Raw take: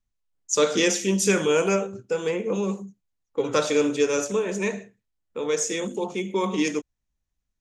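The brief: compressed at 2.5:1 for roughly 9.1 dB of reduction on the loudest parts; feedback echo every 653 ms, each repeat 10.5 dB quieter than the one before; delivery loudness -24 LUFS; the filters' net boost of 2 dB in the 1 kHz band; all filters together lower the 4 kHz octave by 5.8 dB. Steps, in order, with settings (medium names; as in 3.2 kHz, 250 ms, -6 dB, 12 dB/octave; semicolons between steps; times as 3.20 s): peaking EQ 1 kHz +3 dB; peaking EQ 4 kHz -8 dB; compression 2.5:1, threshold -30 dBFS; feedback delay 653 ms, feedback 30%, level -10.5 dB; trim +8 dB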